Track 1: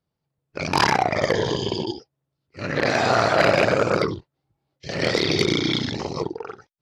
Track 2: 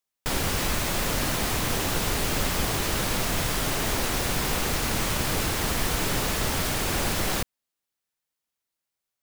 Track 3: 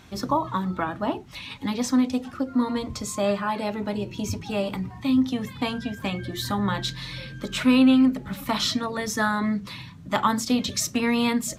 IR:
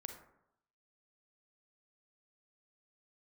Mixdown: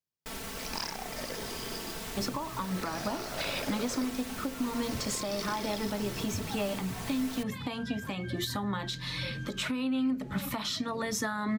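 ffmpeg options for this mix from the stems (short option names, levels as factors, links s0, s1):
-filter_complex "[0:a]equalizer=f=5500:t=o:w=0.65:g=14.5,volume=0.106[s0];[1:a]aecho=1:1:4.5:0.84,volume=0.178[s1];[2:a]acompressor=threshold=0.0447:ratio=16,adelay=2050,volume=1.26[s2];[s0][s1][s2]amix=inputs=3:normalize=0,lowshelf=f=66:g=-7,alimiter=limit=0.0794:level=0:latency=1:release=363"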